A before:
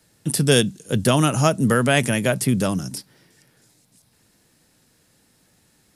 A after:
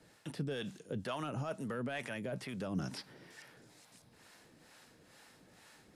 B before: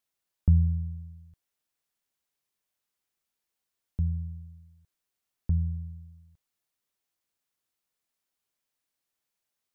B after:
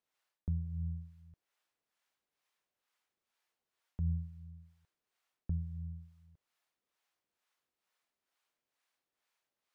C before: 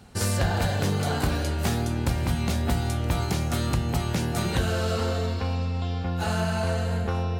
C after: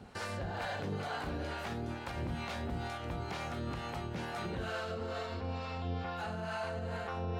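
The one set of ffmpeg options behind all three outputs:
-filter_complex "[0:a]asplit=2[s0][s1];[s1]highpass=f=720:p=1,volume=3.98,asoftclip=type=tanh:threshold=0.794[s2];[s0][s2]amix=inputs=2:normalize=0,lowpass=f=1900:p=1,volume=0.501,areverse,acompressor=threshold=0.0282:ratio=5,areverse,alimiter=level_in=1.68:limit=0.0631:level=0:latency=1:release=80,volume=0.596,acrossover=split=4500[s3][s4];[s4]acompressor=threshold=0.00158:ratio=4:attack=1:release=60[s5];[s3][s5]amix=inputs=2:normalize=0,acrossover=split=550[s6][s7];[s6]aeval=exprs='val(0)*(1-0.7/2+0.7/2*cos(2*PI*2.2*n/s))':c=same[s8];[s7]aeval=exprs='val(0)*(1-0.7/2-0.7/2*cos(2*PI*2.2*n/s))':c=same[s9];[s8][s9]amix=inputs=2:normalize=0,volume=1.33"

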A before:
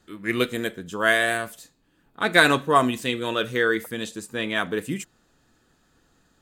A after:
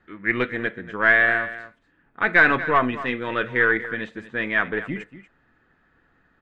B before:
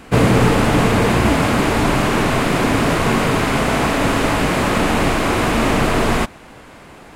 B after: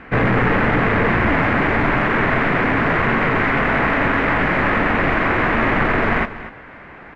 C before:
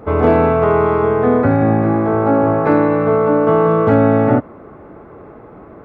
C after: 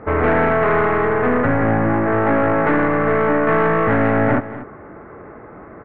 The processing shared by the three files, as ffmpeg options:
-filter_complex "[0:a]aeval=exprs='(tanh(4.47*val(0)+0.4)-tanh(0.4))/4.47':c=same,lowpass=f=1900:t=q:w=2.7,asplit=2[s0][s1];[s1]aecho=0:1:238:0.188[s2];[s0][s2]amix=inputs=2:normalize=0"

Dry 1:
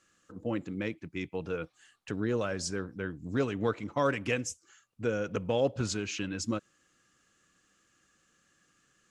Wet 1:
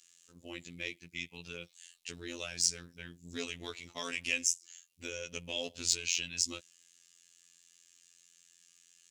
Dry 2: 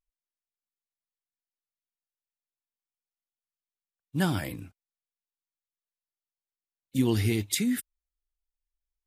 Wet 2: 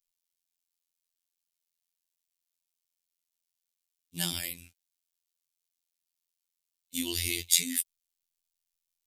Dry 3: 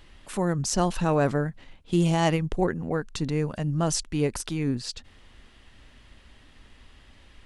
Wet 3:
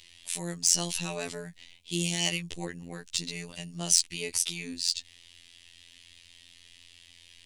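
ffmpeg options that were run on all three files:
-af "afftfilt=real='hypot(re,im)*cos(PI*b)':imag='0':win_size=2048:overlap=0.75,aexciter=amount=5.3:drive=8.8:freq=2100,volume=0.335"

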